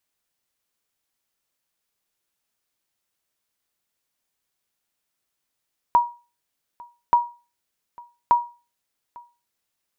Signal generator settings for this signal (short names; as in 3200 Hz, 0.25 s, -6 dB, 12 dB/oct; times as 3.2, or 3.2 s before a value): sonar ping 956 Hz, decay 0.32 s, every 1.18 s, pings 3, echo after 0.85 s, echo -25.5 dB -8.5 dBFS